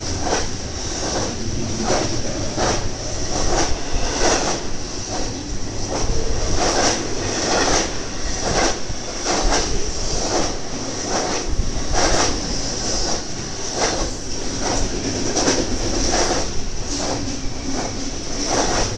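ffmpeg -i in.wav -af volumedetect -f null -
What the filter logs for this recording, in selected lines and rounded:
mean_volume: -20.1 dB
max_volume: -1.3 dB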